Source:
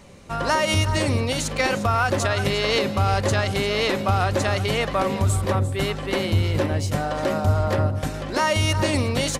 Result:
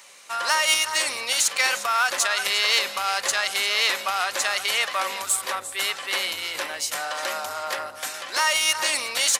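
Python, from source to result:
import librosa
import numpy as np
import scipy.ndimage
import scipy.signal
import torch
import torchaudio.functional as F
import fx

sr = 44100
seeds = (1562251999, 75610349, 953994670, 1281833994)

y = 10.0 ** (-13.5 / 20.0) * np.tanh(x / 10.0 ** (-13.5 / 20.0))
y = scipy.signal.sosfilt(scipy.signal.butter(2, 1200.0, 'highpass', fs=sr, output='sos'), y)
y = fx.high_shelf(y, sr, hz=6000.0, db=7.5)
y = y * librosa.db_to_amplitude(4.5)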